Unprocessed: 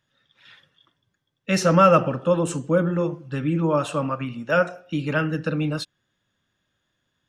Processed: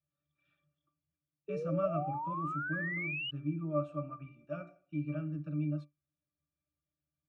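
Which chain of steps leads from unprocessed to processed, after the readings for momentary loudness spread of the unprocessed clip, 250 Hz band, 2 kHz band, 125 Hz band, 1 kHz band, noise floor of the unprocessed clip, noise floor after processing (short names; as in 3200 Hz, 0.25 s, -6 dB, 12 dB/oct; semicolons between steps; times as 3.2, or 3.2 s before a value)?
12 LU, -14.0 dB, -10.5 dB, -12.5 dB, -15.0 dB, -76 dBFS, under -85 dBFS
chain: high shelf 4200 Hz +8.5 dB; octave resonator D, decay 0.16 s; painted sound rise, 1.48–3.31, 410–3000 Hz -31 dBFS; gain -7 dB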